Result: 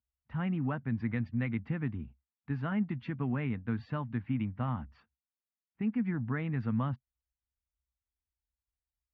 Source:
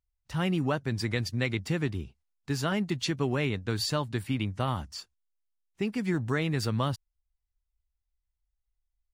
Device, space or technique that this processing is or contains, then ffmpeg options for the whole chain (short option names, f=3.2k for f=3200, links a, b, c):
bass cabinet: -af "highpass=61,equalizer=f=65:t=q:w=4:g=6,equalizer=f=130:t=q:w=4:g=4,equalizer=f=230:t=q:w=4:g=10,equalizer=f=380:t=q:w=4:g=-9,equalizer=f=570:t=q:w=4:g=-5,lowpass=f=2.2k:w=0.5412,lowpass=f=2.2k:w=1.3066,volume=-6dB"